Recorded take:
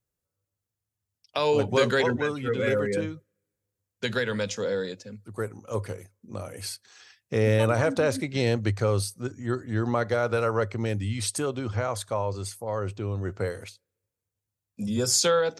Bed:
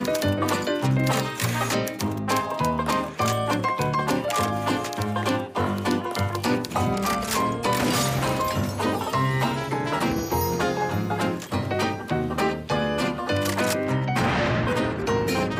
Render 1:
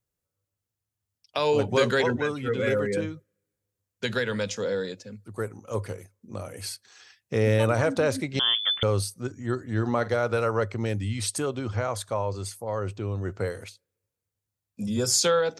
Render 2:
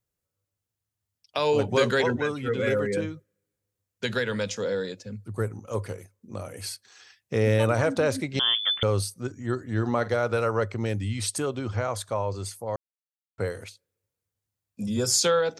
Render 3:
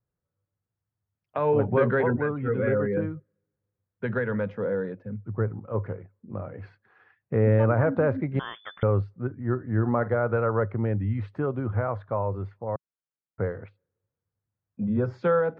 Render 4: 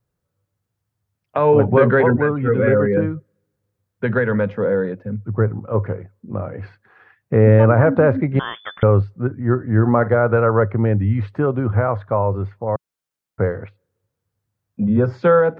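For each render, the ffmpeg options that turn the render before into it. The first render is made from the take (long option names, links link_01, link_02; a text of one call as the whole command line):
ffmpeg -i in.wav -filter_complex "[0:a]asettb=1/sr,asplit=3[link_01][link_02][link_03];[link_01]atrim=end=8.394[link_04];[link_02]atrim=start=8.39:end=8.83,asetpts=PTS-STARTPTS,afade=type=in:duration=0.004:curve=qsin,afade=type=out:start_time=0.436:duration=0.004:curve=qsin,lowpass=frequency=3100:width_type=q:width=0.5098,lowpass=frequency=3100:width_type=q:width=0.6013,lowpass=frequency=3100:width_type=q:width=0.9,lowpass=frequency=3100:width_type=q:width=2.563,afreqshift=-3600[link_05];[link_03]atrim=start=8.826[link_06];[link_04][link_05]acrossfade=duration=0.004:curve1=hsin:curve2=qsin[link_07];[link_07][link_06]acrossfade=duration=0.004:curve1=qsin:curve2=hsin,asettb=1/sr,asplit=3[link_08][link_09][link_10];[link_08]atrim=end=9.734[link_11];[link_09]atrim=start=9.73:end=10.16,asetpts=PTS-STARTPTS,afade=type=in:duration=0.004:curve=qsin,afade=type=out:start_time=0.426:duration=0.004:curve=qsin,asplit=2[link_12][link_13];[link_13]adelay=46,volume=-14dB[link_14];[link_12][link_14]amix=inputs=2:normalize=0,atrim=end_sample=18963[link_15];[link_10]atrim=start=10.156[link_16];[link_11][link_15]acrossfade=duration=0.004:curve1=hsin:curve2=qsin[link_17];[link_17][link_16]acrossfade=duration=0.004:curve1=qsin:curve2=hsin" out.wav
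ffmpeg -i in.wav -filter_complex "[0:a]asettb=1/sr,asplit=3[link_01][link_02][link_03];[link_01]atrim=end=5.064[link_04];[link_02]atrim=start=5.06:end=5.67,asetpts=PTS-STARTPTS,afade=type=in:duration=0.004:curve=qsin,afade=type=out:start_time=0.606:duration=0.004:curve=qsin,lowshelf=frequency=150:gain=11[link_05];[link_03]atrim=start=5.666[link_06];[link_04][link_05]acrossfade=duration=0.004:curve1=hsin:curve2=qsin[link_07];[link_07][link_06]acrossfade=duration=0.004:curve1=qsin:curve2=hsin,asplit=3[link_08][link_09][link_10];[link_08]atrim=end=12.76,asetpts=PTS-STARTPTS,afade=type=out:start_time=12.756:duration=0.004:curve=hsin[link_11];[link_09]atrim=start=12.76:end=13.38,asetpts=PTS-STARTPTS,volume=0[link_12];[link_10]atrim=start=13.38,asetpts=PTS-STARTPTS,afade=type=in:duration=0.004:curve=hsin[link_13];[link_11][link_12][link_13]concat=n=3:v=0:a=1" out.wav
ffmpeg -i in.wav -af "lowpass=frequency=1700:width=0.5412,lowpass=frequency=1700:width=1.3066,equalizer=frequency=150:width_type=o:width=0.97:gain=5.5" out.wav
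ffmpeg -i in.wav -af "volume=9dB,alimiter=limit=-2dB:level=0:latency=1" out.wav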